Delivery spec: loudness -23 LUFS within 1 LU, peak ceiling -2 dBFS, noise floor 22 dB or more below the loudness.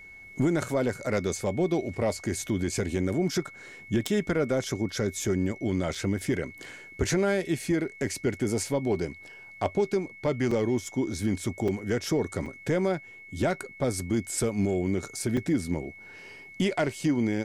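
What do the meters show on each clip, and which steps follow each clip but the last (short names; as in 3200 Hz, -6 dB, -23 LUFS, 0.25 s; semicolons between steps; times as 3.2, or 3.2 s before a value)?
dropouts 5; longest dropout 4.1 ms; steady tone 2200 Hz; tone level -45 dBFS; loudness -28.5 LUFS; peak -11.5 dBFS; loudness target -23.0 LUFS
-> interpolate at 5.95/10.51/11.68/12.46/15.37, 4.1 ms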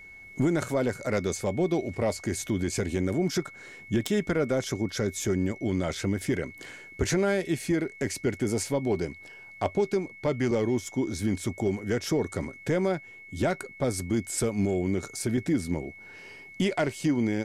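dropouts 0; steady tone 2200 Hz; tone level -45 dBFS
-> notch 2200 Hz, Q 30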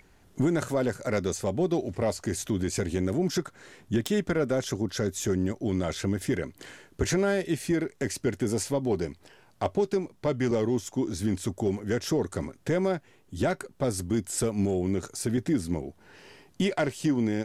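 steady tone none; loudness -29.0 LUFS; peak -11.0 dBFS; loudness target -23.0 LUFS
-> gain +6 dB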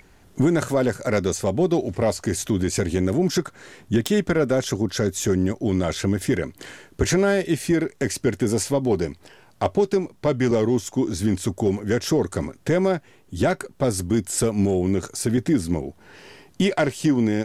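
loudness -23.0 LUFS; peak -5.0 dBFS; noise floor -54 dBFS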